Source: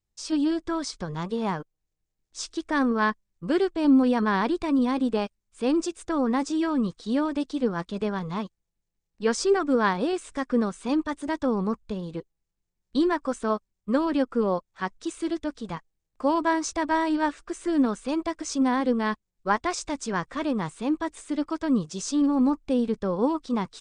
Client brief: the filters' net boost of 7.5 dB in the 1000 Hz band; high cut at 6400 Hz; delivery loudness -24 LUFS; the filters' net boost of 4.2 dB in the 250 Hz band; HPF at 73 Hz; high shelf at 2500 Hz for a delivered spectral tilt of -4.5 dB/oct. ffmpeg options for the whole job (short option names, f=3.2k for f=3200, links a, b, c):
-af "highpass=73,lowpass=6.4k,equalizer=f=250:t=o:g=4.5,equalizer=f=1k:t=o:g=7.5,highshelf=f=2.5k:g=4.5,volume=-2dB"